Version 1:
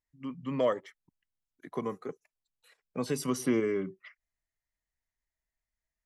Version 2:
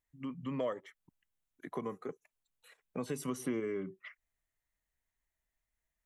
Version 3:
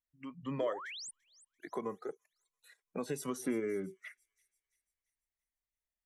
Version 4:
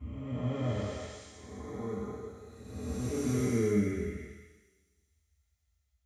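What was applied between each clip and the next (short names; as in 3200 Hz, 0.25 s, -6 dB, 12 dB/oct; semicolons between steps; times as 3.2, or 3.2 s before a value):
compressor 2:1, threshold -43 dBFS, peak gain reduction 11.5 dB; bell 4900 Hz -9.5 dB 0.38 oct; gain +2.5 dB
spectral noise reduction 12 dB; painted sound rise, 0.58–1.11, 220–9900 Hz -46 dBFS; thin delay 0.339 s, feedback 46%, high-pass 5400 Hz, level -16 dB; gain +1 dB
time blur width 0.577 s; reverb RT60 0.70 s, pre-delay 3 ms, DRR -16 dB; gain -4.5 dB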